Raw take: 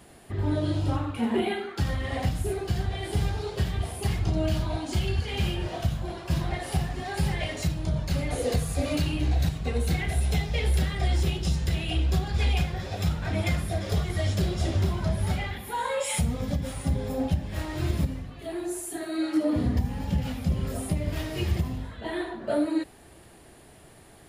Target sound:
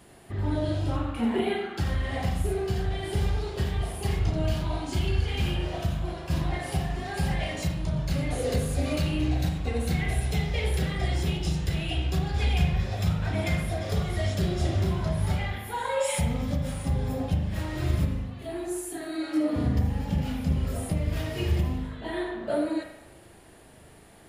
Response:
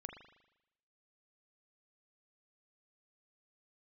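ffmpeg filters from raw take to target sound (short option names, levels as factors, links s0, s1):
-filter_complex "[0:a]asettb=1/sr,asplit=3[s0][s1][s2];[s0]atrim=end=12.354[s3];[s1]atrim=start=12.35:end=12.92,asetpts=PTS-STARTPTS,afade=t=in:d=0.004:c=qsin,afade=t=out:st=0.566:d=0.004:c=qsin,asubboost=boost=10:cutoff=240[s4];[s2]atrim=start=12.916[s5];[s3][s4]acrossfade=d=0.004:c1=hsin:c2=qsin[s6];[s6][s5]acrossfade=d=0.004:c1=qsin:c2=hsin[s7];[1:a]atrim=start_sample=2205[s8];[s7][s8]afir=irnorm=-1:irlink=0,volume=1.58"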